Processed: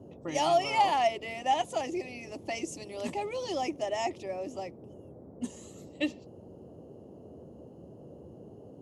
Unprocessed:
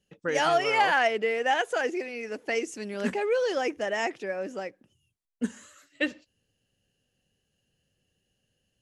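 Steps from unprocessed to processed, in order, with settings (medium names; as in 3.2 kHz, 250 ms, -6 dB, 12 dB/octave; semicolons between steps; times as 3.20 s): static phaser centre 310 Hz, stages 8; band noise 72–540 Hz -49 dBFS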